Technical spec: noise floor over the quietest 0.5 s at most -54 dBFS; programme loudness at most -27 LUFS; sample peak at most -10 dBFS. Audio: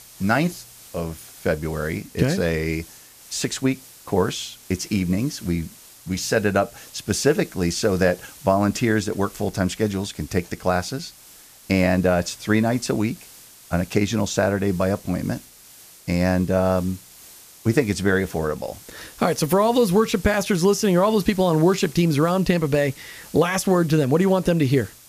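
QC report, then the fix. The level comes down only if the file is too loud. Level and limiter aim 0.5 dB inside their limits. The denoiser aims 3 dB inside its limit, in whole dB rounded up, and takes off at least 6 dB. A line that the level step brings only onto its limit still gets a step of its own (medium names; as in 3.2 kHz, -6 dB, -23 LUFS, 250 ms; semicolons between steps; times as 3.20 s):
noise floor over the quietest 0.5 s -47 dBFS: fail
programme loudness -22.0 LUFS: fail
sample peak -4.0 dBFS: fail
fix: noise reduction 6 dB, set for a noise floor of -47 dBFS; trim -5.5 dB; peak limiter -10.5 dBFS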